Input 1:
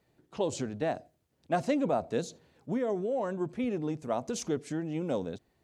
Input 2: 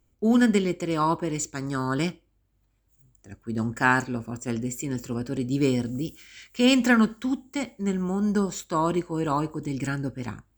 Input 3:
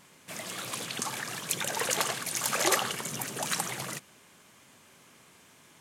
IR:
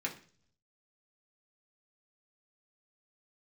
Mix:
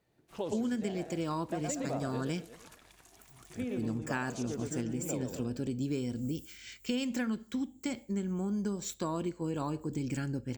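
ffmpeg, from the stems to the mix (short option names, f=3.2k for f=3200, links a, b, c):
-filter_complex "[0:a]volume=-4dB,asplit=3[a][b][c];[a]atrim=end=2.25,asetpts=PTS-STARTPTS,afade=t=out:st=2.246:d=0.004:c=hsin[d];[b]atrim=start=2.25:end=3.5,asetpts=PTS-STARTPTS,volume=0[e];[c]atrim=start=3.5,asetpts=PTS-STARTPTS,afade=t=in:d=0.004:c=hsin[f];[d][e][f]concat=n=3:v=0:a=1,asplit=2[g][h];[h]volume=-3.5dB[i];[1:a]equalizer=f=1.2k:t=o:w=1.6:g=-6.5,adelay=300,volume=0dB[j];[2:a]acompressor=threshold=-32dB:ratio=4,aeval=exprs='val(0)*sin(2*PI*530*n/s)':c=same,aeval=exprs='sgn(val(0))*max(abs(val(0))-0.00211,0)':c=same,volume=-18dB[k];[i]aecho=0:1:117|234|351|468|585|702:1|0.41|0.168|0.0689|0.0283|0.0116[l];[g][j][k][l]amix=inputs=4:normalize=0,acompressor=threshold=-31dB:ratio=6"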